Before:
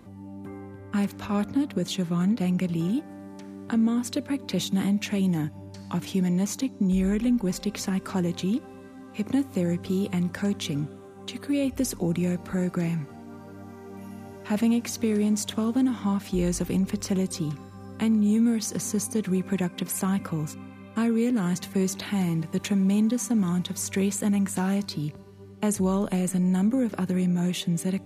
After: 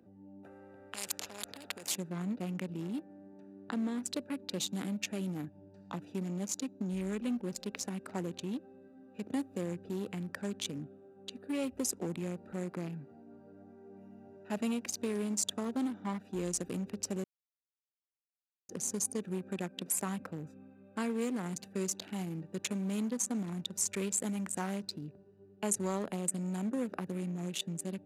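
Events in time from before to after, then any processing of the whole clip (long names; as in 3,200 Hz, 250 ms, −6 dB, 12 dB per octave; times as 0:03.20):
0:00.43–0:01.96: every bin compressed towards the loudest bin 4 to 1
0:17.24–0:18.69: silence
whole clip: adaptive Wiener filter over 41 samples; dynamic equaliser 7,600 Hz, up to +6 dB, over −52 dBFS, Q 1.5; high-pass filter 620 Hz 6 dB per octave; level −2 dB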